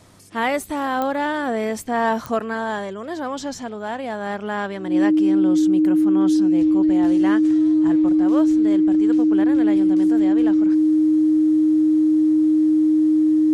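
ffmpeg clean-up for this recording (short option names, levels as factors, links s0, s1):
-af "adeclick=t=4,bandreject=f=99.2:t=h:w=4,bandreject=f=198.4:t=h:w=4,bandreject=f=297.6:t=h:w=4,bandreject=f=396.8:t=h:w=4,bandreject=f=496:t=h:w=4,bandreject=f=310:w=30"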